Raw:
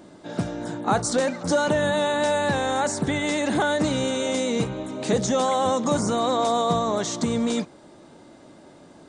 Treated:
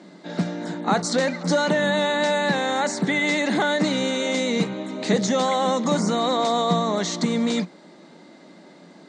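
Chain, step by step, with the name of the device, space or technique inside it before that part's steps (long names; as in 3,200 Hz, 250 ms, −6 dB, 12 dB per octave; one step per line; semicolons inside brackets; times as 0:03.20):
television speaker (loudspeaker in its box 180–7,700 Hz, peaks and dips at 180 Hz +10 dB, 2,000 Hz +8 dB, 4,200 Hz +7 dB)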